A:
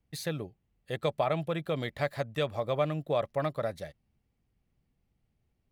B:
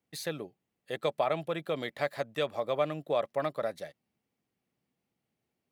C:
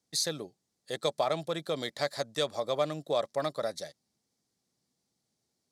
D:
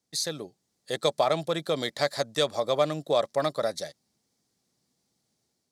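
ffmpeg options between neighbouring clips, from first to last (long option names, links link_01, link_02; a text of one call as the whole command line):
ffmpeg -i in.wav -af "highpass=230" out.wav
ffmpeg -i in.wav -af "adynamicsmooth=sensitivity=0.5:basefreq=4400,aexciter=amount=13.6:drive=4.9:freq=4100" out.wav
ffmpeg -i in.wav -af "dynaudnorm=framelen=190:gausssize=5:maxgain=5dB" out.wav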